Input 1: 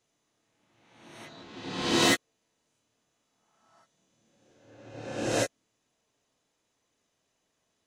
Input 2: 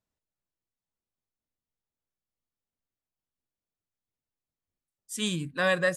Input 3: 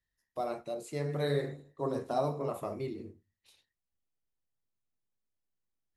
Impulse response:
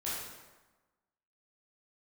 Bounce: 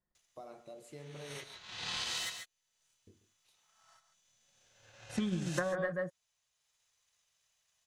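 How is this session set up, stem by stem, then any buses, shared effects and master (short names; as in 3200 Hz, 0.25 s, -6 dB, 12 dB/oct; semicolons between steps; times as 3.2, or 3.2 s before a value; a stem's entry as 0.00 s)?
+2.5 dB, 0.15 s, bus A, no send, echo send -7 dB, passive tone stack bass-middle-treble 10-0-10; compressor 8:1, threshold -39 dBFS, peak gain reduction 14.5 dB
-2.0 dB, 0.00 s, bus A, no send, echo send -11 dB, comb 5.6 ms, depth 97%; sample leveller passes 1; polynomial smoothing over 41 samples
-9.5 dB, 0.00 s, muted 1.44–3.07, no bus, no send, echo send -15 dB, compressor, threshold -36 dBFS, peak gain reduction 10.5 dB
bus A: 0.0 dB, transient shaper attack +10 dB, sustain -6 dB; compressor 2:1, threshold -28 dBFS, peak gain reduction 9 dB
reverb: off
echo: echo 0.138 s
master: compressor 6:1, threshold -31 dBFS, peak gain reduction 11 dB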